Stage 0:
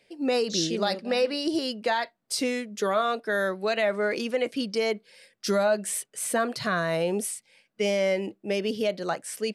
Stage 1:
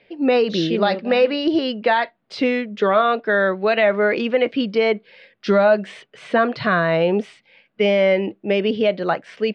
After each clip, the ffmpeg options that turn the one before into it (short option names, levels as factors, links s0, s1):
-af "lowpass=f=3400:w=0.5412,lowpass=f=3400:w=1.3066,volume=2.66"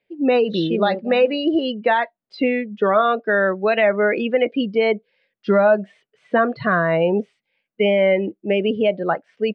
-af "afftdn=nr=19:nf=-26"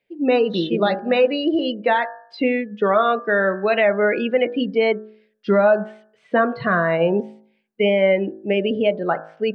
-af "bandreject=f=53.84:t=h:w=4,bandreject=f=107.68:t=h:w=4,bandreject=f=161.52:t=h:w=4,bandreject=f=215.36:t=h:w=4,bandreject=f=269.2:t=h:w=4,bandreject=f=323.04:t=h:w=4,bandreject=f=376.88:t=h:w=4,bandreject=f=430.72:t=h:w=4,bandreject=f=484.56:t=h:w=4,bandreject=f=538.4:t=h:w=4,bandreject=f=592.24:t=h:w=4,bandreject=f=646.08:t=h:w=4,bandreject=f=699.92:t=h:w=4,bandreject=f=753.76:t=h:w=4,bandreject=f=807.6:t=h:w=4,bandreject=f=861.44:t=h:w=4,bandreject=f=915.28:t=h:w=4,bandreject=f=969.12:t=h:w=4,bandreject=f=1022.96:t=h:w=4,bandreject=f=1076.8:t=h:w=4,bandreject=f=1130.64:t=h:w=4,bandreject=f=1184.48:t=h:w=4,bandreject=f=1238.32:t=h:w=4,bandreject=f=1292.16:t=h:w=4,bandreject=f=1346:t=h:w=4,bandreject=f=1399.84:t=h:w=4,bandreject=f=1453.68:t=h:w=4,bandreject=f=1507.52:t=h:w=4,bandreject=f=1561.36:t=h:w=4,bandreject=f=1615.2:t=h:w=4,bandreject=f=1669.04:t=h:w=4,bandreject=f=1722.88:t=h:w=4,bandreject=f=1776.72:t=h:w=4"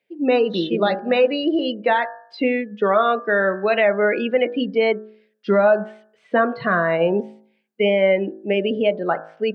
-af "highpass=160"